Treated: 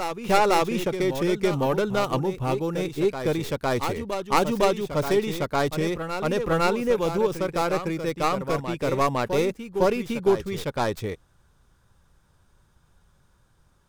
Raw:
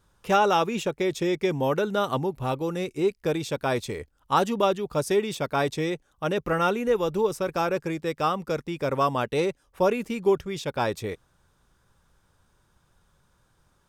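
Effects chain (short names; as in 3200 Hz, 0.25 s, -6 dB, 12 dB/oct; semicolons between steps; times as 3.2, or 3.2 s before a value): tracing distortion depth 0.22 ms; low shelf 160 Hz +5.5 dB; on a send: reverse echo 0.507 s -8 dB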